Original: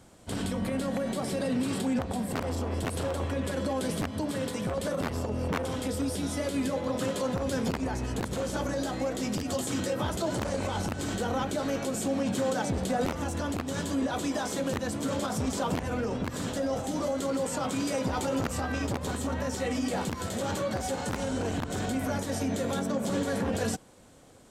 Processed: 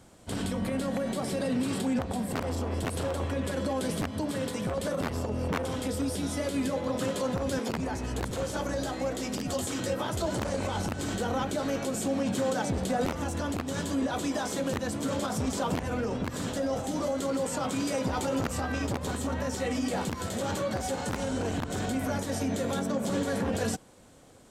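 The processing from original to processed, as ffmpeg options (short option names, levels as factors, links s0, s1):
-filter_complex "[0:a]asettb=1/sr,asplit=3[s0][s1][s2];[s0]atrim=end=7.594[s3];[s1]atrim=start=7.59:end=10.32,asetpts=PTS-STARTPTS,afade=t=in:d=0.004:c=qsin,afade=t=out:st=2.726:d=0.004:c=qsin,acrossover=split=210[s4][s5];[s4]adelay=100[s6];[s6][s5]amix=inputs=2:normalize=0,atrim=end_sample=120393[s7];[s2]atrim=start=10.316[s8];[s3][s7]acrossfade=d=0.004:c1=hsin:c2=qsin[s9];[s9][s8]acrossfade=d=0.004:c1=qsin:c2=hsin"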